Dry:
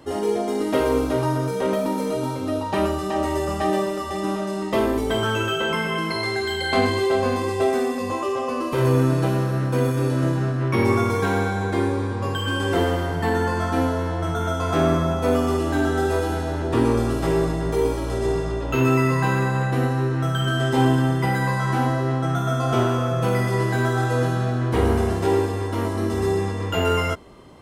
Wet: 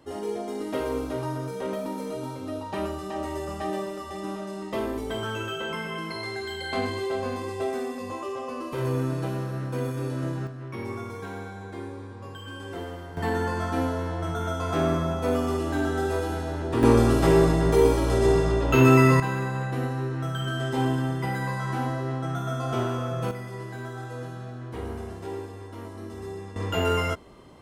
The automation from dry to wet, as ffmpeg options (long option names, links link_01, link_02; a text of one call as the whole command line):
ffmpeg -i in.wav -af "asetnsamples=nb_out_samples=441:pad=0,asendcmd='10.47 volume volume -15dB;13.17 volume volume -5dB;16.83 volume volume 2.5dB;19.2 volume volume -7dB;23.31 volume volume -15dB;26.56 volume volume -3.5dB',volume=-8.5dB" out.wav